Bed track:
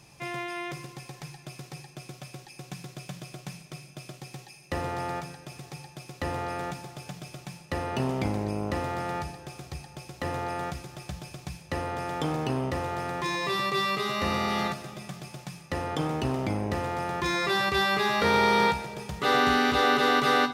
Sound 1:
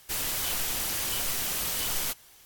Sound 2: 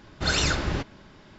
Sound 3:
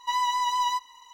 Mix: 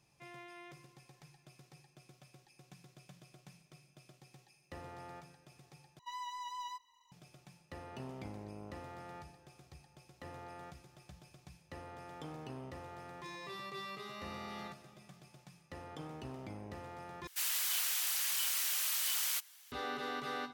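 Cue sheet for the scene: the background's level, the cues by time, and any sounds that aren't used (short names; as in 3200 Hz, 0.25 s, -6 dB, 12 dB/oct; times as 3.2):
bed track -17.5 dB
5.99 replace with 3 -18 dB
17.27 replace with 1 -4 dB + HPF 1300 Hz
not used: 2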